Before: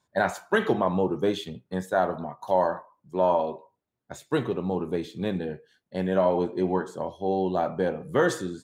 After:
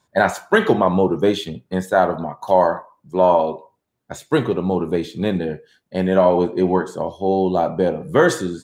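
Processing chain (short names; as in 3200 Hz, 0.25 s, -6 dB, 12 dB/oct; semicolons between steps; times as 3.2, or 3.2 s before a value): 6.89–8.08 dynamic EQ 1700 Hz, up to -7 dB, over -46 dBFS, Q 1.5; gain +8 dB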